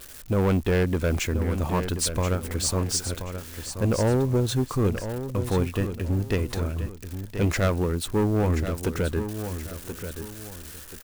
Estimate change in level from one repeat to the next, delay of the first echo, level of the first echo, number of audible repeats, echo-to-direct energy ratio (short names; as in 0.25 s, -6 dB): -9.5 dB, 1.03 s, -9.5 dB, 2, -9.0 dB